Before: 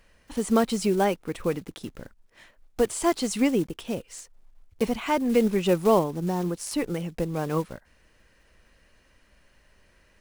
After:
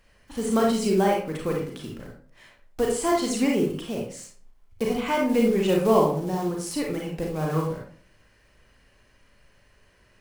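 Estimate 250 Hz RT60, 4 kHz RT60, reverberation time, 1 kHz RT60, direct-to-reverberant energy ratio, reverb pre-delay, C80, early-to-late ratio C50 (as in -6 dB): 0.55 s, 0.35 s, 0.50 s, 0.45 s, -1.5 dB, 31 ms, 8.0 dB, 2.5 dB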